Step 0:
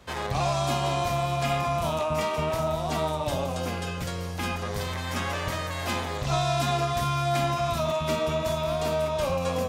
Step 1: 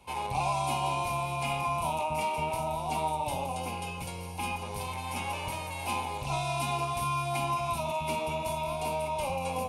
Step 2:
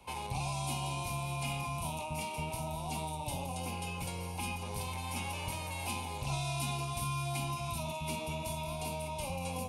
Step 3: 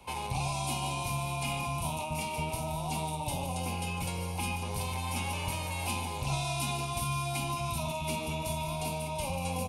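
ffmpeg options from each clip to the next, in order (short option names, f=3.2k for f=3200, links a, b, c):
-af "superequalizer=9b=3.16:10b=0.562:11b=0.316:12b=2.24:16b=3.55,volume=-7.5dB"
-filter_complex "[0:a]acrossover=split=290|3000[a][b][c];[b]acompressor=threshold=-41dB:ratio=4[d];[a][d][c]amix=inputs=3:normalize=0"
-af "aecho=1:1:148:0.251,volume=3.5dB"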